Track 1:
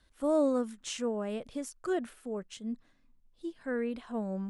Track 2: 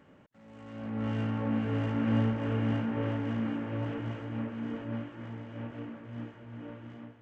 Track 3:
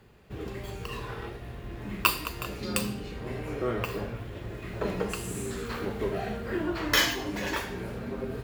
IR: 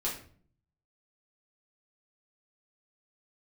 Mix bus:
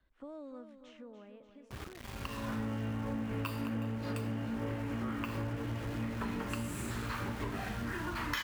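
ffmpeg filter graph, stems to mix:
-filter_complex "[0:a]lowpass=2400,acrossover=split=220|1900[link_01][link_02][link_03];[link_01]acompressor=threshold=-51dB:ratio=4[link_04];[link_02]acompressor=threshold=-43dB:ratio=4[link_05];[link_03]acompressor=threshold=-57dB:ratio=4[link_06];[link_04][link_05][link_06]amix=inputs=3:normalize=0,volume=-6.5dB,afade=type=out:start_time=0.71:duration=0.77:silence=0.446684,asplit=3[link_07][link_08][link_09];[link_08]volume=-10dB[link_10];[1:a]adelay=1650,volume=2dB[link_11];[2:a]firequalizer=gain_entry='entry(100,0);entry(520,-16);entry(900,3);entry(5200,-4)':delay=0.05:min_phase=1,adelay=1400,volume=-1dB[link_12];[link_09]apad=whole_len=438214[link_13];[link_12][link_13]sidechaincompress=threshold=-58dB:ratio=4:attack=7.1:release=414[link_14];[link_11][link_14]amix=inputs=2:normalize=0,aeval=exprs='val(0)*gte(abs(val(0)),0.0075)':channel_layout=same,acompressor=threshold=-33dB:ratio=10,volume=0dB[link_15];[link_10]aecho=0:1:292|584|876|1168|1460|1752|2044|2336|2628:1|0.57|0.325|0.185|0.106|0.0602|0.0343|0.0195|0.0111[link_16];[link_07][link_15][link_16]amix=inputs=3:normalize=0"

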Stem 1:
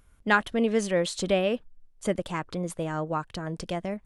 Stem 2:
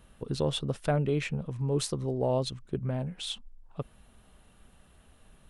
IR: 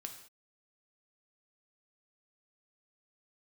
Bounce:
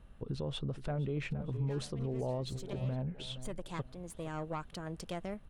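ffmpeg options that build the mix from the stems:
-filter_complex "[0:a]highshelf=frequency=6300:gain=6,aeval=exprs='(tanh(11.2*val(0)+0.55)-tanh(0.55))/11.2':channel_layout=same,adelay=1400,volume=-6.5dB[link_01];[1:a]lowpass=frequency=2400:poles=1,lowshelf=frequency=110:gain=7.5,volume=-3.5dB,asplit=3[link_02][link_03][link_04];[link_03]volume=-16.5dB[link_05];[link_04]apad=whole_len=240348[link_06];[link_01][link_06]sidechaincompress=threshold=-44dB:ratio=4:attack=16:release=522[link_07];[link_05]aecho=0:1:467|934|1401|1868:1|0.31|0.0961|0.0298[link_08];[link_07][link_02][link_08]amix=inputs=3:normalize=0,alimiter=level_in=3.5dB:limit=-24dB:level=0:latency=1:release=75,volume=-3.5dB"

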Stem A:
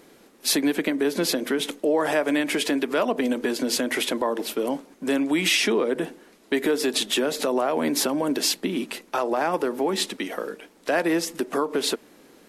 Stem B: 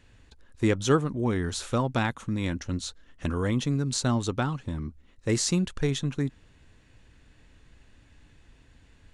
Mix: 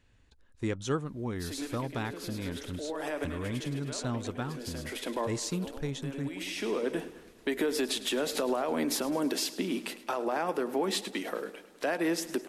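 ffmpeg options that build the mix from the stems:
ffmpeg -i stem1.wav -i stem2.wav -filter_complex "[0:a]alimiter=limit=-16dB:level=0:latency=1:release=201,adelay=950,volume=-4.5dB,asplit=2[link_01][link_02];[link_02]volume=-16.5dB[link_03];[1:a]volume=-8.5dB,asplit=2[link_04][link_05];[link_05]apad=whole_len=592569[link_06];[link_01][link_06]sidechaincompress=threshold=-50dB:ratio=3:attack=7.6:release=448[link_07];[link_03]aecho=0:1:105|210|315|420|525|630|735|840|945:1|0.58|0.336|0.195|0.113|0.0656|0.0381|0.0221|0.0128[link_08];[link_07][link_04][link_08]amix=inputs=3:normalize=0" out.wav

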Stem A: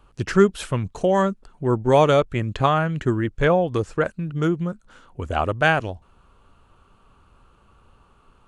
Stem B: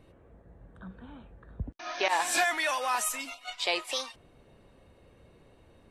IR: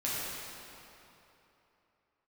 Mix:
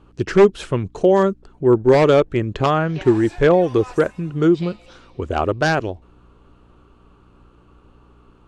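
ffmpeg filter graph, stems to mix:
-filter_complex "[0:a]aeval=exprs='val(0)+0.00224*(sin(2*PI*60*n/s)+sin(2*PI*2*60*n/s)/2+sin(2*PI*3*60*n/s)/3+sin(2*PI*4*60*n/s)/4+sin(2*PI*5*60*n/s)/5)':channel_layout=same,aeval=exprs='0.299*(abs(mod(val(0)/0.299+3,4)-2)-1)':channel_layout=same,volume=0.5dB[link_01];[1:a]tremolo=f=1.4:d=0.67,adelay=950,volume=-11dB,afade=type=in:start_time=1.62:duration=0.39:silence=0.266073,asplit=2[link_02][link_03];[link_03]volume=-15dB[link_04];[2:a]atrim=start_sample=2205[link_05];[link_04][link_05]afir=irnorm=-1:irlink=0[link_06];[link_01][link_02][link_06]amix=inputs=3:normalize=0,lowpass=7100,equalizer=frequency=370:width_type=o:width=0.82:gain=9"

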